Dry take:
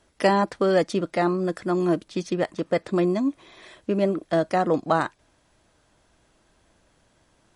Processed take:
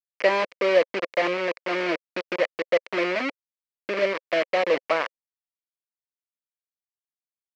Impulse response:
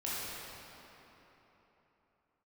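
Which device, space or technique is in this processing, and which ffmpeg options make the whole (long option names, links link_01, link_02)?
hand-held game console: -af "acrusher=bits=3:mix=0:aa=0.000001,highpass=480,equalizer=frequency=530:width_type=q:width=4:gain=7,equalizer=frequency=810:width_type=q:width=4:gain=-9,equalizer=frequency=1400:width_type=q:width=4:gain=-4,equalizer=frequency=2200:width_type=q:width=4:gain=7,equalizer=frequency=3600:width_type=q:width=4:gain=-7,lowpass=frequency=4100:width=0.5412,lowpass=frequency=4100:width=1.3066"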